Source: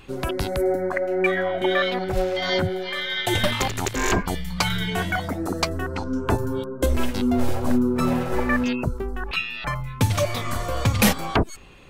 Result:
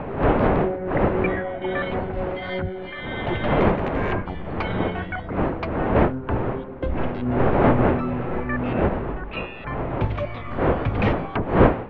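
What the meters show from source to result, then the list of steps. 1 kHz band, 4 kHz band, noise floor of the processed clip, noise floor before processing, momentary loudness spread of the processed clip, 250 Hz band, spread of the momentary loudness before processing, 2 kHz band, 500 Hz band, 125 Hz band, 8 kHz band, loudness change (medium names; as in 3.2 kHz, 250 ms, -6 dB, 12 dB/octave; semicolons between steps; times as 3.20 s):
+2.5 dB, -12.0 dB, -34 dBFS, -35 dBFS, 11 LU, +1.0 dB, 6 LU, -3.0 dB, +2.0 dB, +2.0 dB, under -35 dB, 0.0 dB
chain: octave divider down 1 oct, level -3 dB; wind noise 600 Hz -19 dBFS; low-pass 2.7 kHz 24 dB/octave; trim -5 dB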